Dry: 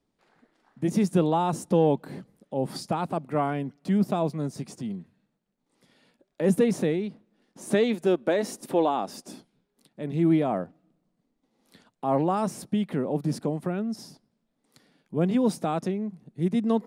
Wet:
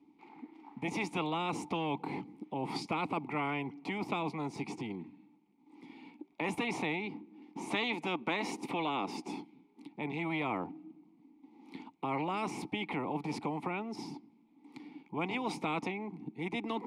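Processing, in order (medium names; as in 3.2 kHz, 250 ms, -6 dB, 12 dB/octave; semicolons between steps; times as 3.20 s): vowel filter u; spectrum-flattening compressor 4:1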